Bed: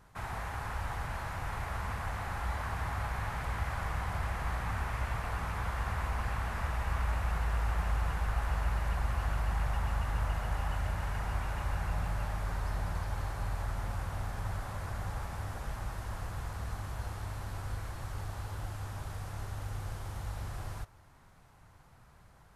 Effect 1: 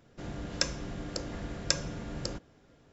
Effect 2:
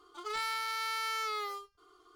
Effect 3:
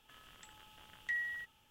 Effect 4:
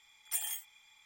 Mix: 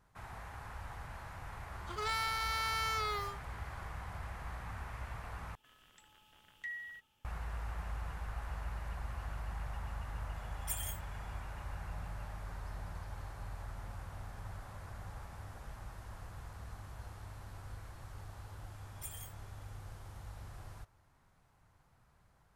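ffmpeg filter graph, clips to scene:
-filter_complex "[4:a]asplit=2[a][b];[0:a]volume=-9.5dB,asplit=2[c][d];[c]atrim=end=5.554[e];[3:a]atrim=end=1.7,asetpts=PTS-STARTPTS,volume=-6dB[f];[d]atrim=start=7.246[g];[2:a]atrim=end=2.15,asetpts=PTS-STARTPTS,volume=-0.5dB,afade=t=in:d=0.004:c=hsin,afade=t=out:st=2.146:d=0.004:c=hsin,adelay=1720[h];[a]atrim=end=1.05,asetpts=PTS-STARTPTS,volume=-5dB,afade=t=in:d=0.004:c=hsin,afade=t=out:st=1.046:d=0.004:c=hsin,adelay=10360[i];[b]atrim=end=1.05,asetpts=PTS-STARTPTS,volume=-12dB,afade=t=in:d=0.004:c=hsin,afade=t=out:st=1.046:d=0.004:c=hsin,adelay=18700[j];[e][f]acrossfade=d=0.004:c1=hsin:c2=hsin[k];[k][g]acrossfade=d=0.004:c1=hsin:c2=hsin[l];[l][h][i][j]amix=inputs=4:normalize=0"

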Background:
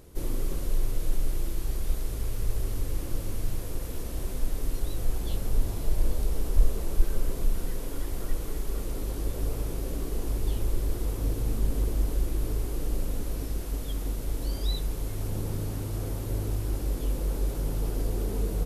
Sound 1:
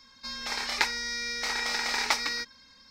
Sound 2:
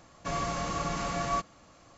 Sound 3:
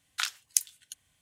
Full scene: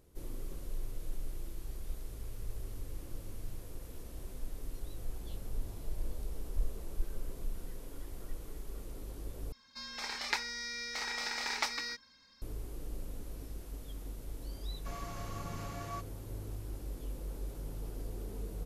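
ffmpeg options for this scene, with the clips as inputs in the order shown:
-filter_complex "[0:a]volume=-12.5dB,asplit=2[a][b];[a]atrim=end=9.524[c];[1:a]atrim=end=2.9,asetpts=PTS-STARTPTS,volume=-7.5dB[d];[b]atrim=start=12.416[e];[2:a]atrim=end=1.97,asetpts=PTS-STARTPTS,volume=-13dB,afade=t=in:d=0.004:c=hsin,afade=t=out:st=1.966:d=0.004:c=hsin,adelay=643860S[f];[c][d]acrossfade=d=0.004:c1=hsin:c2=hsin[g];[g][e]acrossfade=d=0.004:c1=hsin:c2=hsin[h];[h][f]amix=inputs=2:normalize=0"

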